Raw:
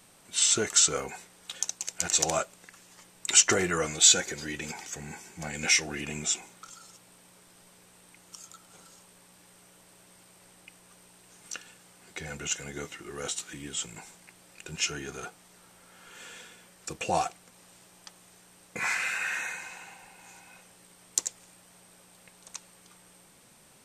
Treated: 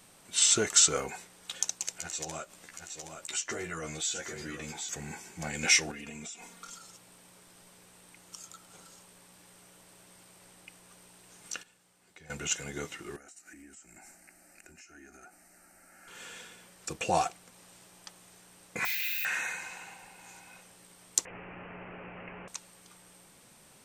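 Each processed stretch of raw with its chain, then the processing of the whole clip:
1.98–4.89 s: delay 770 ms -12.5 dB + compression 2:1, threshold -45 dBFS + doubling 13 ms -3.5 dB
5.91–6.78 s: comb 4.3 ms, depth 73% + compression 16:1, threshold -39 dBFS
11.63–12.30 s: gate -44 dBFS, range -11 dB + compression 10:1, threshold -50 dBFS
13.16–16.08 s: compression 20:1, threshold -45 dBFS + static phaser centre 690 Hz, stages 8
18.85–19.25 s: zero-crossing glitches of -29 dBFS + FFT filter 110 Hz 0 dB, 260 Hz -12 dB, 430 Hz -23 dB, 820 Hz -18 dB, 1.2 kHz -29 dB, 1.9 kHz -9 dB, 3.6 kHz +4 dB, 6.5 kHz -9 dB, 9.7 kHz -21 dB, 14 kHz +7 dB
21.25–22.48 s: jump at every zero crossing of -37 dBFS + steep low-pass 2.8 kHz 96 dB/octave + peaking EQ 400 Hz +3.5 dB 0.39 oct
whole clip: none

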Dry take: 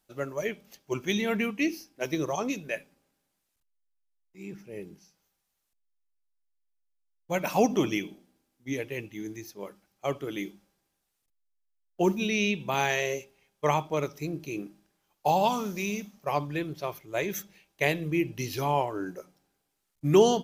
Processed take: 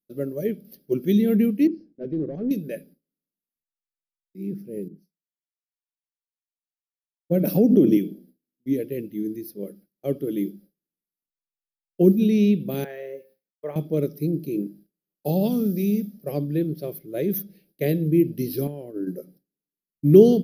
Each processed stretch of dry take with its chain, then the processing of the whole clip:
1.67–2.51 s: hard clipper -30 dBFS + tape spacing loss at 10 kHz 44 dB
4.88–7.97 s: peaking EQ 370 Hz +7.5 dB 2.9 oct + compression 10:1, threshold -20 dBFS + three bands expanded up and down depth 70%
12.84–13.76 s: three-band isolator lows -21 dB, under 580 Hz, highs -22 dB, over 2 kHz + de-hum 176.8 Hz, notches 29 + word length cut 12-bit, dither none
18.67–19.07 s: expander -29 dBFS + compression 12:1, threshold -31 dBFS
whole clip: gate with hold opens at -51 dBFS; FFT filter 110 Hz 0 dB, 160 Hz +13 dB, 220 Hz +14 dB, 530 Hz +7 dB, 950 Hz -20 dB, 1.6 kHz -7 dB, 2.6 kHz -10 dB, 5 kHz +1 dB, 7.4 kHz -21 dB, 11 kHz +12 dB; trim -2 dB

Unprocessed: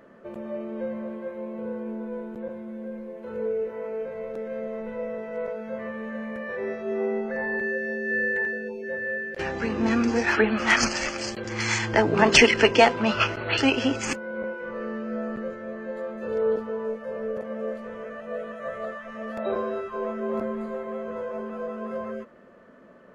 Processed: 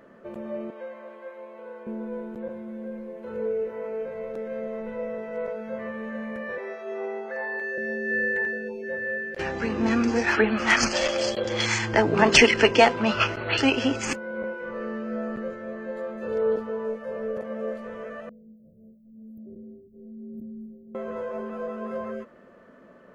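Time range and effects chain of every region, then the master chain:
0.70–1.87 s: high-pass 670 Hz + treble shelf 8.8 kHz -6 dB
6.58–7.78 s: high-pass 580 Hz + doubling 23 ms -12 dB
10.93–11.66 s: peaking EQ 3.7 kHz +5 dB + small resonant body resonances 560/3300 Hz, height 14 dB, ringing for 20 ms + transformer saturation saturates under 610 Hz
18.29–20.95 s: inverse Chebyshev band-stop 1–5.9 kHz, stop band 70 dB + tilt EQ +2 dB/octave
whole clip: none

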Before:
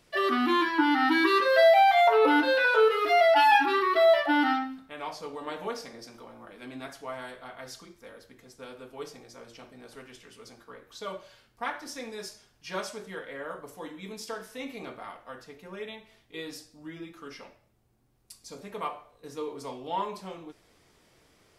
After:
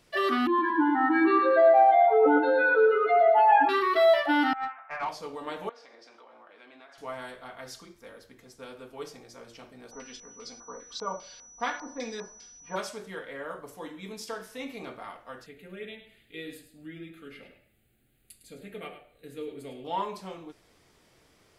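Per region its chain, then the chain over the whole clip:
0.47–3.69 s: spectral contrast enhancement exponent 2.2 + feedback delay 114 ms, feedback 55%, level -7 dB
4.53–5.09 s: elliptic band-pass 680–2400 Hz + compressor with a negative ratio -36 dBFS, ratio -0.5 + overdrive pedal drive 19 dB, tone 1.2 kHz, clips at -20.5 dBFS
5.69–6.98 s: band-pass 510–3900 Hz + compression 4:1, threshold -49 dBFS
9.90–12.75 s: comb 4.1 ms, depth 54% + LFO low-pass square 2.5 Hz 980–5200 Hz + whistle 5.9 kHz -49 dBFS
15.46–19.85 s: static phaser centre 2.4 kHz, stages 4 + delay 104 ms -10.5 dB + tape noise reduction on one side only encoder only
whole clip: none

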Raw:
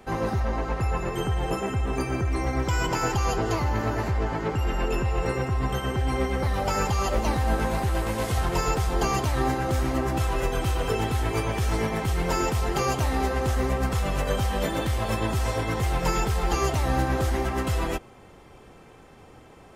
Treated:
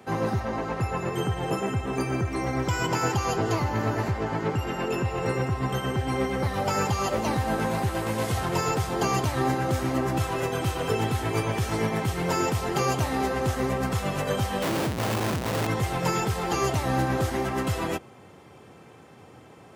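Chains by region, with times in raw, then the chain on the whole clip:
14.62–15.67 s: high-pass 40 Hz 6 dB/octave + Schmitt trigger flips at -32 dBFS
whole clip: high-pass 98 Hz 24 dB/octave; bass shelf 140 Hz +4.5 dB

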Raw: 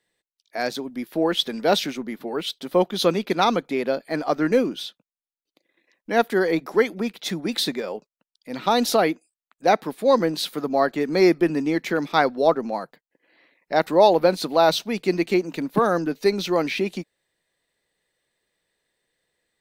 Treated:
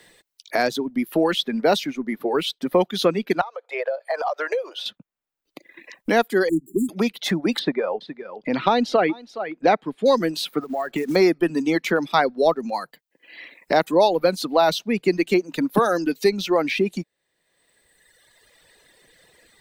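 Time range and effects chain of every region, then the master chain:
3.41–4.86 s: steep high-pass 520 Hz 48 dB/octave + tilt EQ -4.5 dB/octave + compression 8:1, threshold -30 dBFS
6.49–6.89 s: median filter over 9 samples + brick-wall FIR band-stop 400–6900 Hz + three bands compressed up and down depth 70%
7.59–10.06 s: low-pass 2.8 kHz + delay 416 ms -15 dB
10.61–11.16 s: treble shelf 8.7 kHz -4.5 dB + short-mantissa float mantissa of 2-bit + compression 5:1, threshold -30 dBFS
whole clip: reverb removal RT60 1.6 s; three bands compressed up and down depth 70%; trim +2 dB

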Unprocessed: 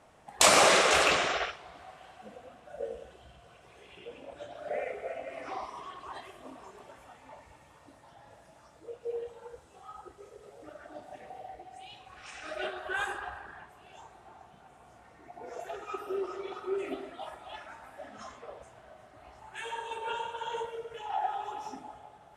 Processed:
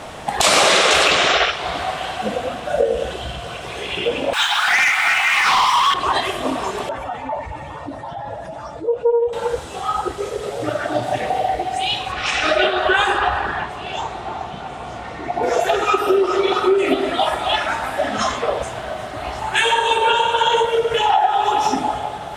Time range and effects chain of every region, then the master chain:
4.33–5.94 s: median filter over 3 samples + steep high-pass 830 Hz 96 dB/octave + waveshaping leveller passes 3
6.89–9.33 s: spectral contrast enhancement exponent 1.6 + loudspeaker Doppler distortion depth 0.14 ms
10.59–11.18 s: high-pass 91 Hz + peaking EQ 120 Hz +14.5 dB 0.26 oct
12.12–15.43 s: distance through air 66 m + band-stop 1.6 kHz, Q 16
whole clip: peaking EQ 3.6 kHz +5.5 dB 0.82 oct; compression 5:1, threshold -39 dBFS; loudness maximiser +26.5 dB; trim -1 dB

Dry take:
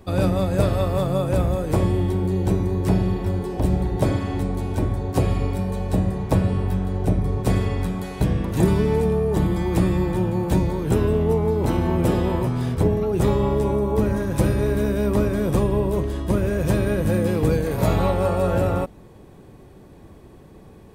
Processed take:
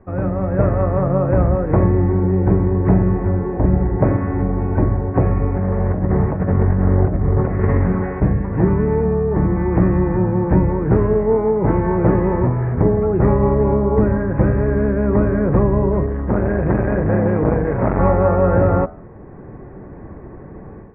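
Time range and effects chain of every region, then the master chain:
5.55–8.22 s: compressor with a negative ratio -24 dBFS + doubling 13 ms -10.5 dB + loudspeaker Doppler distortion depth 0.26 ms
16.06–17.99 s: treble shelf 5.6 kHz +12 dB + transformer saturation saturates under 570 Hz
whole clip: steep low-pass 2 kHz 48 dB/octave; de-hum 82.47 Hz, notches 20; level rider; trim -1 dB

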